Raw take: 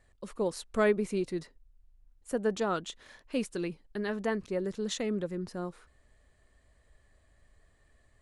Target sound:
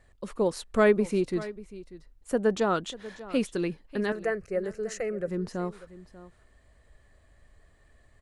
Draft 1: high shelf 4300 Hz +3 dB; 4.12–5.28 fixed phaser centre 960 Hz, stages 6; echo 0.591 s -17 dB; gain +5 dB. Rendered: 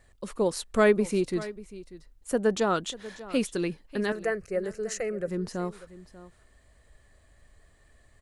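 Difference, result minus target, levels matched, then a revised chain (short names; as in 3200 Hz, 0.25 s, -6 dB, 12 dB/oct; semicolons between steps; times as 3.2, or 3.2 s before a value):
8000 Hz band +5.0 dB
high shelf 4300 Hz -4 dB; 4.12–5.28 fixed phaser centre 960 Hz, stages 6; echo 0.591 s -17 dB; gain +5 dB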